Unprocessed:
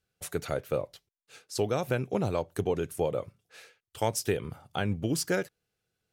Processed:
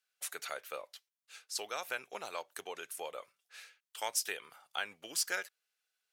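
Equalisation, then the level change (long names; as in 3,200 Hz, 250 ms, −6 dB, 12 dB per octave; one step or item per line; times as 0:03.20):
high-pass filter 1,200 Hz 12 dB per octave
0.0 dB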